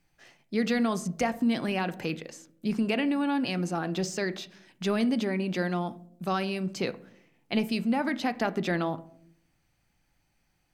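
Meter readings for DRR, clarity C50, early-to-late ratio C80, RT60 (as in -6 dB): 11.5 dB, 18.0 dB, 22.0 dB, 0.65 s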